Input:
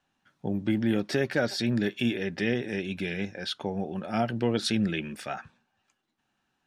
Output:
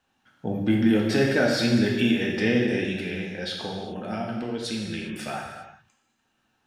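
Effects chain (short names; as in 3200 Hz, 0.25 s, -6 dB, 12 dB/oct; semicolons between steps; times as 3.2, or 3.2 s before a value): 2.98–5.34 compressor 10:1, threshold -32 dBFS, peak gain reduction 12 dB; non-linear reverb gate 0.43 s falling, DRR -1.5 dB; gain +2 dB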